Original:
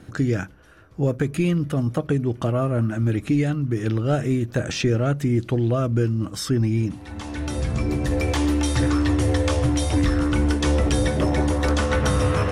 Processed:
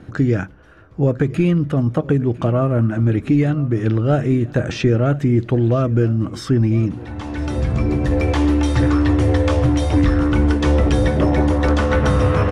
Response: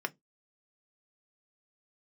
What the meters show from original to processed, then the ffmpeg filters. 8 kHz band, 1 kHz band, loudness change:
n/a, +4.0 dB, +4.5 dB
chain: -af "aemphasis=mode=reproduction:type=75kf,aecho=1:1:1003|2006|3009:0.1|0.034|0.0116,volume=5dB"

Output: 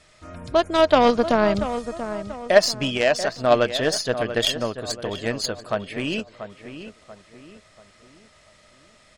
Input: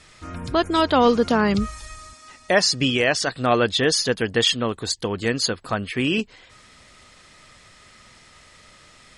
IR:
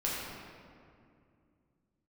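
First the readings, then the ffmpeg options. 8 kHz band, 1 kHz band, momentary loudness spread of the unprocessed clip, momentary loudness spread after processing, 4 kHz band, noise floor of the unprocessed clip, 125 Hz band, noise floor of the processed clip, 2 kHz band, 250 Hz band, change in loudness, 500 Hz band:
-4.0 dB, 0.0 dB, 10 LU, 16 LU, -3.5 dB, -51 dBFS, -4.0 dB, -55 dBFS, -2.5 dB, -3.0 dB, -1.0 dB, +2.5 dB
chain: -filter_complex "[0:a]aeval=exprs='0.562*(cos(1*acos(clip(val(0)/0.562,-1,1)))-cos(1*PI/2))+0.112*(cos(3*acos(clip(val(0)/0.562,-1,1)))-cos(3*PI/2))+0.0141*(cos(4*acos(clip(val(0)/0.562,-1,1)))-cos(4*PI/2))':c=same,equalizer=f=620:w=5.3:g=11,asplit=2[a][b];[b]adelay=686,lowpass=f=2.3k:p=1,volume=-10.5dB,asplit=2[c][d];[d]adelay=686,lowpass=f=2.3k:p=1,volume=0.41,asplit=2[e][f];[f]adelay=686,lowpass=f=2.3k:p=1,volume=0.41,asplit=2[g][h];[h]adelay=686,lowpass=f=2.3k:p=1,volume=0.41[i];[a][c][e][g][i]amix=inputs=5:normalize=0,volume=2dB"

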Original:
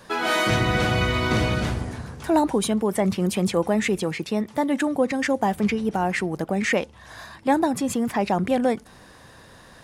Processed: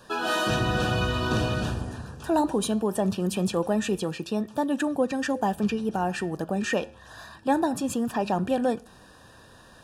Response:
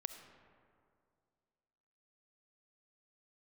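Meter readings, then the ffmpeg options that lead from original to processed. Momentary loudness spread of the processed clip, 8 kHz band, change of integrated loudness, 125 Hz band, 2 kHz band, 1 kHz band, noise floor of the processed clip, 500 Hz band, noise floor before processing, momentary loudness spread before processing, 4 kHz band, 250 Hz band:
6 LU, -3.5 dB, -3.5 dB, -3.5 dB, -5.5 dB, -3.0 dB, -52 dBFS, -3.5 dB, -49 dBFS, 6 LU, -3.5 dB, -3.5 dB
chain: -filter_complex "[0:a]flanger=delay=2.6:depth=8.5:regen=-87:speed=0.21:shape=triangular,asuperstop=centerf=2100:order=20:qfactor=4.4,asplit=2[a][b];[1:a]atrim=start_sample=2205,atrim=end_sample=6615[c];[b][c]afir=irnorm=-1:irlink=0,volume=-13.5dB[d];[a][d]amix=inputs=2:normalize=0"

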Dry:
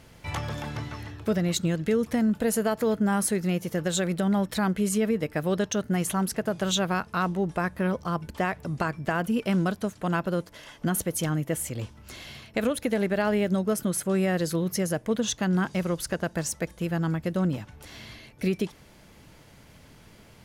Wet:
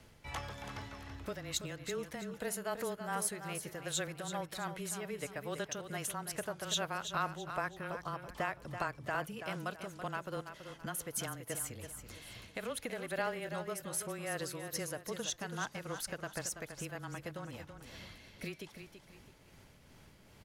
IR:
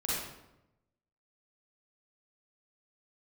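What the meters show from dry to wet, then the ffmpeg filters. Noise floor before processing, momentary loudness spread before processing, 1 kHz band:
-53 dBFS, 9 LU, -8.5 dB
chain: -filter_complex "[0:a]acrossover=split=550|5900[a][b][c];[a]acompressor=threshold=-36dB:ratio=10[d];[d][b][c]amix=inputs=3:normalize=0,tremolo=f=2.5:d=0.4,afreqshift=-19,aecho=1:1:331|662|993|1324:0.355|0.124|0.0435|0.0152,volume=-6.5dB"

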